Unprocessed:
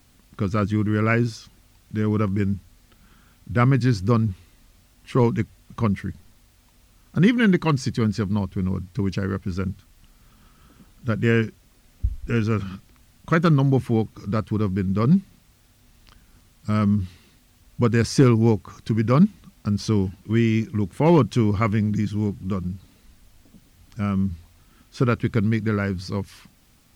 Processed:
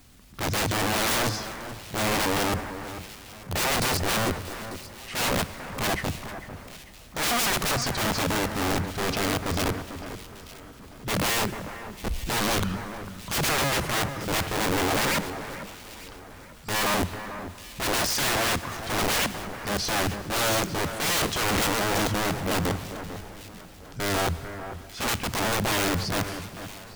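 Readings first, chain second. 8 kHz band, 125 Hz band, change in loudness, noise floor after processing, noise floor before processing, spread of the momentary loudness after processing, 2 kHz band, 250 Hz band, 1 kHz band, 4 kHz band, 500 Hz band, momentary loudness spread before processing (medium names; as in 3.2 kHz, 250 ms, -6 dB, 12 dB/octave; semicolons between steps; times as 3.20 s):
+14.0 dB, -10.5 dB, -3.5 dB, -45 dBFS, -57 dBFS, 16 LU, +4.0 dB, -10.0 dB, +3.0 dB, +11.0 dB, -3.5 dB, 13 LU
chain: integer overflow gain 23 dB; on a send: echo whose repeats swap between lows and highs 447 ms, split 2.1 kHz, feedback 54%, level -11 dB; on the sum: plate-style reverb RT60 4.4 s, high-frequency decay 0.85×, DRR 16.5 dB; transient shaper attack -6 dB, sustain +2 dB; trim +3.5 dB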